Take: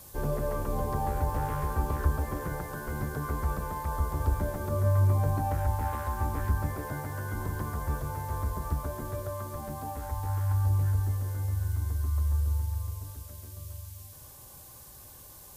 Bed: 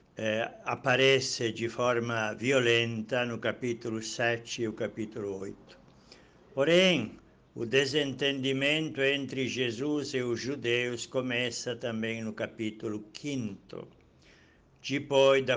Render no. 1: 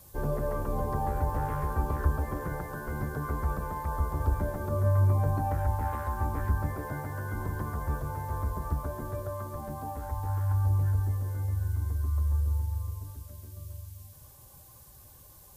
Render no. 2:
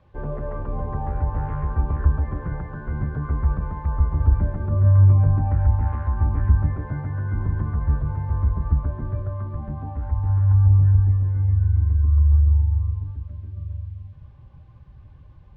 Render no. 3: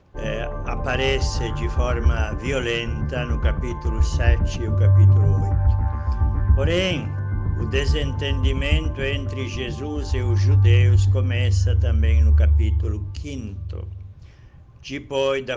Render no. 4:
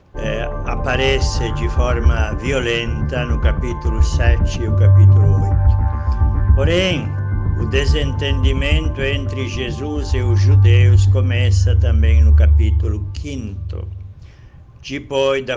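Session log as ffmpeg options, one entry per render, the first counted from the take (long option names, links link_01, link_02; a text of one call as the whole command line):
ffmpeg -i in.wav -af "afftdn=noise_reduction=6:noise_floor=-49" out.wav
ffmpeg -i in.wav -af "lowpass=frequency=2800:width=0.5412,lowpass=frequency=2800:width=1.3066,asubboost=boost=3.5:cutoff=250" out.wav
ffmpeg -i in.wav -i bed.wav -filter_complex "[1:a]volume=1dB[link_01];[0:a][link_01]amix=inputs=2:normalize=0" out.wav
ffmpeg -i in.wav -af "volume=5dB,alimiter=limit=-3dB:level=0:latency=1" out.wav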